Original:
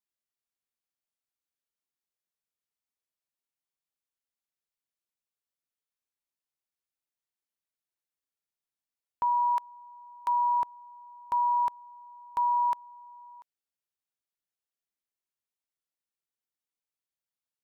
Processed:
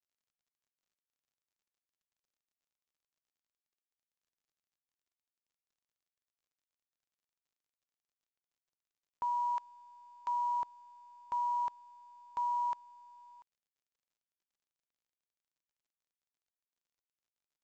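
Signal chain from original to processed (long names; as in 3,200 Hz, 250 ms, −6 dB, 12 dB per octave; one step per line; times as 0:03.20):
level −7.5 dB
mu-law 128 kbit/s 16,000 Hz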